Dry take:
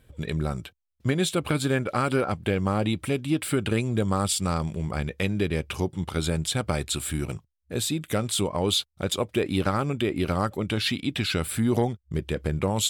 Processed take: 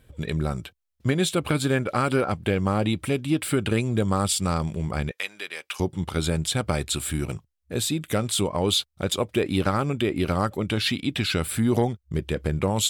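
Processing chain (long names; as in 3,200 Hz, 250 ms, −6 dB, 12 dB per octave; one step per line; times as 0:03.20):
0:05.11–0:05.80: high-pass filter 1,100 Hz 12 dB per octave
level +1.5 dB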